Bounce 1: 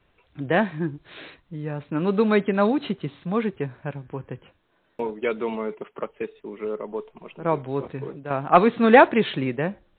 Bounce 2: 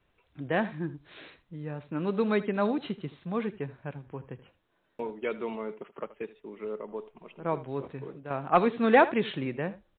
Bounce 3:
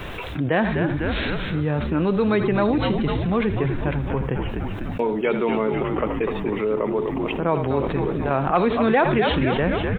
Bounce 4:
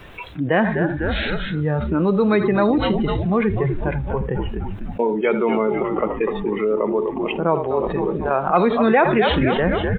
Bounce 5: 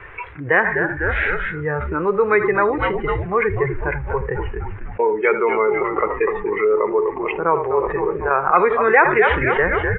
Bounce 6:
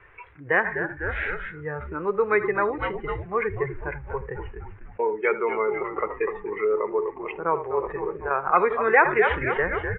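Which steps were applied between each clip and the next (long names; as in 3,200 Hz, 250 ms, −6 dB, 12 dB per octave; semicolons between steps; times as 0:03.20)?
single-tap delay 79 ms −17 dB; level −7 dB
echo with shifted repeats 249 ms, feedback 56%, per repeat −79 Hz, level −10 dB; envelope flattener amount 70%
noise reduction from a noise print of the clip's start 12 dB; level +3 dB
drawn EQ curve 110 Hz 0 dB, 230 Hz −15 dB, 430 Hz +4 dB, 640 Hz −5 dB, 970 Hz +5 dB, 2,100 Hz +9 dB, 4,000 Hz −21 dB
expander for the loud parts 1.5 to 1, over −31 dBFS; level −3.5 dB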